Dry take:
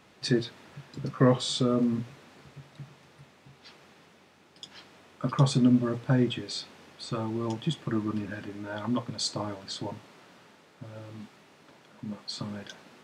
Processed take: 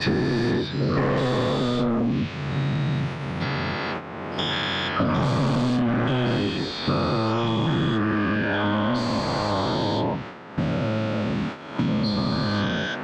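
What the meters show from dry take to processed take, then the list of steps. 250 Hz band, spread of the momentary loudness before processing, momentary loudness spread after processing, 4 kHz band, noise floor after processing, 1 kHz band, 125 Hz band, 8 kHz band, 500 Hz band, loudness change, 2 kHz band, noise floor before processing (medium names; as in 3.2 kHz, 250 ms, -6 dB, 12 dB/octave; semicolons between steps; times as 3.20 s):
+6.5 dB, 23 LU, 5 LU, +7.5 dB, -35 dBFS, +12.0 dB, +7.0 dB, -3.5 dB, +8.0 dB, +5.0 dB, +14.5 dB, -59 dBFS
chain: every event in the spectrogram widened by 480 ms; treble shelf 3.3 kHz +11.5 dB; gate -44 dBFS, range -10 dB; level-controlled noise filter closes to 1.3 kHz, open at -15 dBFS; saturation -21.5 dBFS, distortion -7 dB; low-pass that closes with the level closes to 1.8 kHz, closed at -23 dBFS; three bands compressed up and down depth 100%; trim +4 dB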